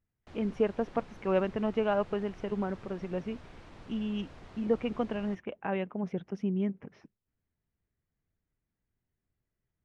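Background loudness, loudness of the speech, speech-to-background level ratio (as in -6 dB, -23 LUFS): -52.5 LUFS, -33.5 LUFS, 19.0 dB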